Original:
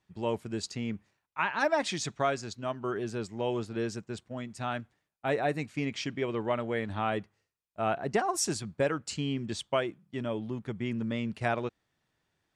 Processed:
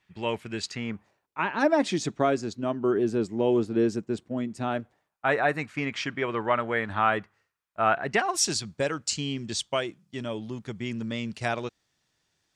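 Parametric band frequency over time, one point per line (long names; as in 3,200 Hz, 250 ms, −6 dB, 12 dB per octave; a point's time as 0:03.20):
parametric band +11.5 dB 1.7 octaves
0:00.65 2,300 Hz
0:01.39 300 Hz
0:04.62 300 Hz
0:05.28 1,400 Hz
0:07.88 1,400 Hz
0:08.71 5,900 Hz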